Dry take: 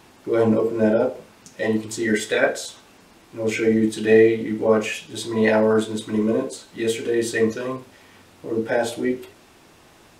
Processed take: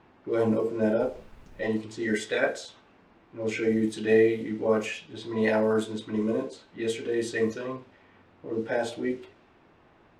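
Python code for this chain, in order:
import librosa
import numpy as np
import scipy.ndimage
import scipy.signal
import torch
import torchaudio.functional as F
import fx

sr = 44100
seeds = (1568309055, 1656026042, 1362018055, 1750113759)

y = fx.env_lowpass(x, sr, base_hz=2000.0, full_db=-14.0)
y = fx.dmg_noise_colour(y, sr, seeds[0], colour='brown', level_db=-43.0, at=(1.02, 1.68), fade=0.02)
y = y * librosa.db_to_amplitude(-6.5)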